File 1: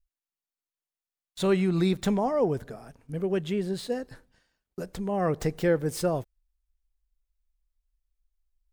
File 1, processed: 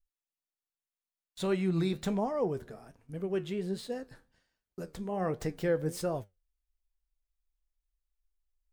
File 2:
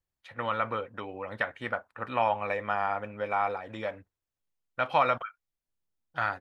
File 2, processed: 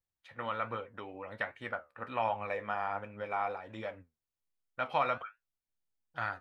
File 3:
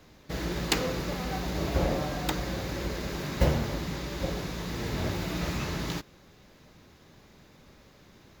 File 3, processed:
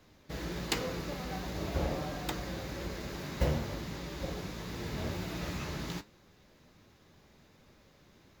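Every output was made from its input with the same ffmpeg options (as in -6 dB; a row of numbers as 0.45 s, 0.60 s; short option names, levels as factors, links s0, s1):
-af "flanger=delay=8.1:depth=6.3:regen=70:speed=1.3:shape=triangular,volume=0.841"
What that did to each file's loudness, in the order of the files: -5.5 LU, -6.0 LU, -6.0 LU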